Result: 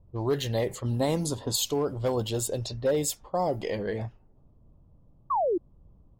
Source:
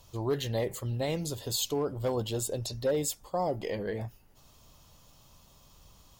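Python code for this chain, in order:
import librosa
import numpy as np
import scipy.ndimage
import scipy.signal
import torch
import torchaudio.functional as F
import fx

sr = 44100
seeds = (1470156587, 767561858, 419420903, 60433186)

y = fx.env_lowpass(x, sr, base_hz=300.0, full_db=-28.5)
y = fx.graphic_eq_15(y, sr, hz=(250, 1000, 2500, 10000), db=(7, 8, -6, 9), at=(0.84, 1.56))
y = fx.spec_paint(y, sr, seeds[0], shape='fall', start_s=5.3, length_s=0.28, low_hz=320.0, high_hz=1200.0, level_db=-28.0)
y = F.gain(torch.from_numpy(y), 3.0).numpy()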